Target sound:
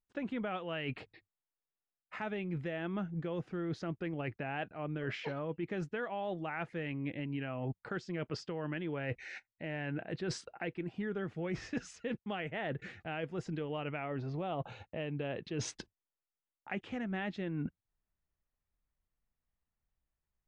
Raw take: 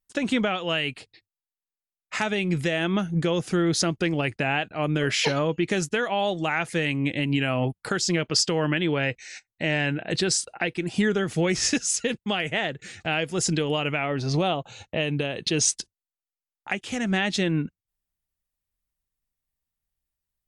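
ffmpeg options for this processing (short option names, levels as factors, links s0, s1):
-af "lowpass=1900,areverse,acompressor=threshold=0.0158:ratio=8,areverse,volume=1.12"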